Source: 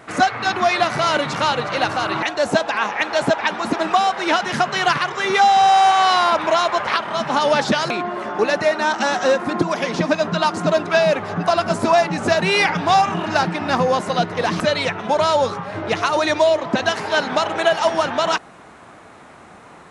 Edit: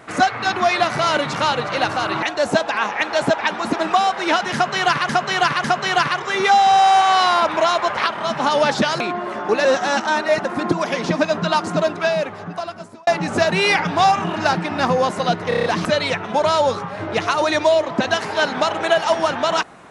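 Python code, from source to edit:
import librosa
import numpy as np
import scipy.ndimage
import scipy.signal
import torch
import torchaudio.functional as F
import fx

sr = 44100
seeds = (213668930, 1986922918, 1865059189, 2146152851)

y = fx.edit(x, sr, fx.repeat(start_s=4.54, length_s=0.55, count=3),
    fx.reverse_span(start_s=8.55, length_s=0.8),
    fx.fade_out_span(start_s=10.52, length_s=1.45),
    fx.stutter(start_s=14.39, slice_s=0.03, count=6), tone=tone)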